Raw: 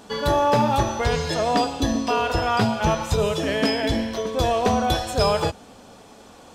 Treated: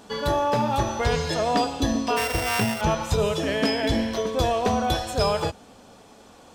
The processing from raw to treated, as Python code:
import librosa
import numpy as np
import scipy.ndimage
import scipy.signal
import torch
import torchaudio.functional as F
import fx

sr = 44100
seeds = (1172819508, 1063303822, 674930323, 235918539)

y = fx.sample_sort(x, sr, block=16, at=(2.16, 2.8), fade=0.02)
y = fx.rider(y, sr, range_db=10, speed_s=0.5)
y = y * librosa.db_to_amplitude(-2.0)